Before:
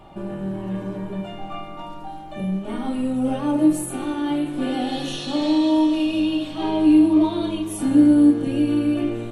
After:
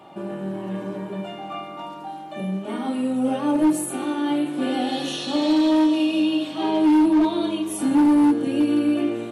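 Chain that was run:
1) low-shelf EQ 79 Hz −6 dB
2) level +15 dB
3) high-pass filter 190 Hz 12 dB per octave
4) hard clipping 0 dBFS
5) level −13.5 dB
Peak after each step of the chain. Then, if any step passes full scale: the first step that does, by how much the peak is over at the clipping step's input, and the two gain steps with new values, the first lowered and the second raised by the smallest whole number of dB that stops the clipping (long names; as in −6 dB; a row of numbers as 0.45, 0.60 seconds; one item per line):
−6.0, +9.0, +8.5, 0.0, −13.5 dBFS
step 2, 8.5 dB
step 2 +6 dB, step 5 −4.5 dB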